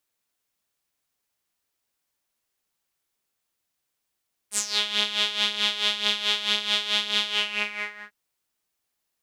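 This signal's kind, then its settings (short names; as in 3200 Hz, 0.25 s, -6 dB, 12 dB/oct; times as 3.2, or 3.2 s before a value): synth patch with tremolo G#3, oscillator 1 saw, sub -26 dB, filter bandpass, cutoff 1700 Hz, Q 5.2, filter envelope 2.5 oct, filter decay 0.29 s, attack 71 ms, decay 0.09 s, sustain -4 dB, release 0.84 s, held 2.76 s, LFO 4.6 Hz, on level 11.5 dB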